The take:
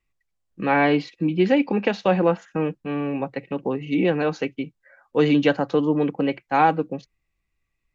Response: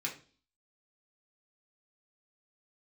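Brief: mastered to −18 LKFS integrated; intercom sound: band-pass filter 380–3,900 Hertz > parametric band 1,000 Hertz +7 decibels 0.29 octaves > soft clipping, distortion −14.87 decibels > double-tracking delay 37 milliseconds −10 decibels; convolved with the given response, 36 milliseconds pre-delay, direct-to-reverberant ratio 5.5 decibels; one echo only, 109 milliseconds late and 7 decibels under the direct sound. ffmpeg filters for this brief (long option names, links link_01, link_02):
-filter_complex "[0:a]aecho=1:1:109:0.447,asplit=2[link_01][link_02];[1:a]atrim=start_sample=2205,adelay=36[link_03];[link_02][link_03]afir=irnorm=-1:irlink=0,volume=-8dB[link_04];[link_01][link_04]amix=inputs=2:normalize=0,highpass=380,lowpass=3900,equalizer=frequency=1000:width_type=o:width=0.29:gain=7,asoftclip=threshold=-12.5dB,asplit=2[link_05][link_06];[link_06]adelay=37,volume=-10dB[link_07];[link_05][link_07]amix=inputs=2:normalize=0,volume=6dB"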